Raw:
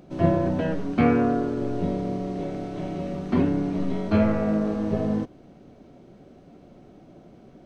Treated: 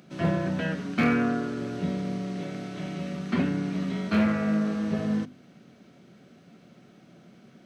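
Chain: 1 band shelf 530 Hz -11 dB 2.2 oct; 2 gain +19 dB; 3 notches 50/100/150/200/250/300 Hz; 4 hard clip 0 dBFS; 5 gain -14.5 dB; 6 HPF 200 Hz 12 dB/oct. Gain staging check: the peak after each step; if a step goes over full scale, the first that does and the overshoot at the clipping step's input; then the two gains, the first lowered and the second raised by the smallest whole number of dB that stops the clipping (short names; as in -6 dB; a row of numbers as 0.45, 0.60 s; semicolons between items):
-10.5, +8.5, +8.0, 0.0, -14.5, -12.0 dBFS; step 2, 8.0 dB; step 2 +11 dB, step 5 -6.5 dB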